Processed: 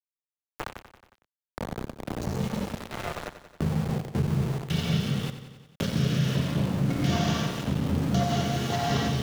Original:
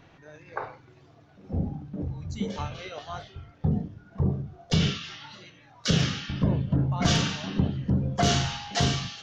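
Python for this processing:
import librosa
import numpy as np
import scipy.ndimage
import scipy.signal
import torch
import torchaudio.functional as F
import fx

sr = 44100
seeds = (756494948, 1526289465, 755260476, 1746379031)

p1 = fx.local_reverse(x, sr, ms=138.0)
p2 = scipy.signal.sosfilt(scipy.signal.butter(2, 110.0, 'highpass', fs=sr, output='sos'), p1)
p3 = fx.level_steps(p2, sr, step_db=13)
p4 = fx.peak_eq(p3, sr, hz=300.0, db=-2.0, octaves=0.46)
p5 = fx.rev_gated(p4, sr, seeds[0], gate_ms=350, shape='flat', drr_db=-6.5)
p6 = fx.rotary(p5, sr, hz=1.2)
p7 = np.where(np.abs(p6) >= 10.0 ** (-31.0 / 20.0), p6, 0.0)
p8 = fx.high_shelf(p7, sr, hz=2300.0, db=-7.5)
p9 = p8 + fx.echo_feedback(p8, sr, ms=91, feedback_pct=51, wet_db=-13, dry=0)
y = fx.band_squash(p9, sr, depth_pct=70)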